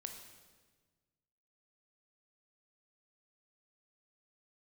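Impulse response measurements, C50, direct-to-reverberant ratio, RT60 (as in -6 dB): 6.0 dB, 4.5 dB, 1.4 s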